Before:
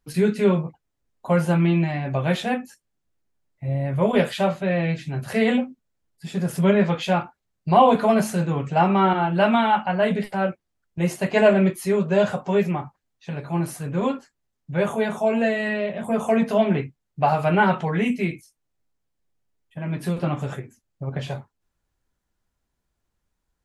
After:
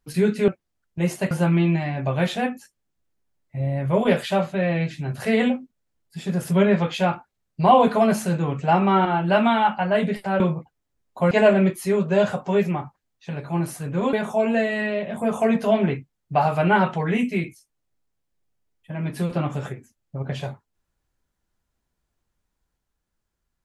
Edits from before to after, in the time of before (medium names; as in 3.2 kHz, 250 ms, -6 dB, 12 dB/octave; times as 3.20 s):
0.48–1.39 s: swap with 10.48–11.31 s
14.13–15.00 s: delete